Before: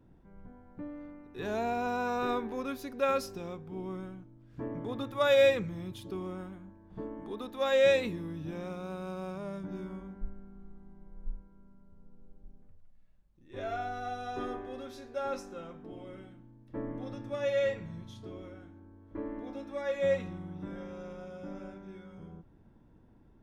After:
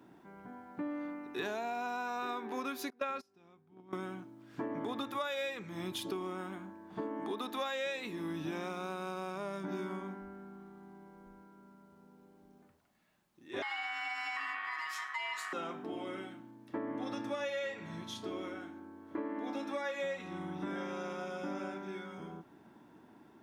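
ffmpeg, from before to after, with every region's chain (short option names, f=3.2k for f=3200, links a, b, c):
-filter_complex "[0:a]asettb=1/sr,asplit=3[a][b][c];[a]atrim=end=2.904[d];[b]atrim=start=2.9:end=3.93,asetpts=PTS-STARTPTS,afade=t=in:d=0.004:c=qsin,afade=t=out:st=1.026:d=0.004:c=qsin,lowpass=f=3.5k:p=1,agate=range=-26dB:threshold=-35dB:ratio=16:release=100:detection=peak,asubboost=boost=8.5:cutoff=240[e];[c]atrim=start=3.926[f];[d][e]acrossfade=d=0.004:c1=hsin:c2=qsin[g];[g][f]acrossfade=d=0.004:c1=qsin:c2=hsin,asettb=1/sr,asplit=3[h][i][j];[h]atrim=end=13.624[k];[i]atrim=start=13.62:end=15.53,asetpts=PTS-STARTPTS,afade=t=in:d=0.004:c=qsin,afade=t=out:st=1.906:d=0.004:c=qsin,acompressor=threshold=-41dB:ratio=2.5:attack=3.2:release=140:knee=1:detection=peak,aeval=exprs='val(0)*sin(2*PI*1500*n/s)':c=same,highpass=f=690:p=1[l];[j]atrim=start=15.526[m];[k][l]acrossfade=d=0.004:c1=hsin:c2=qsin[n];[n][m]acrossfade=d=0.004:c1=qsin:c2=hsin,highpass=340,equalizer=f=510:w=3.3:g=-9.5,acompressor=threshold=-45dB:ratio=16,volume=11dB"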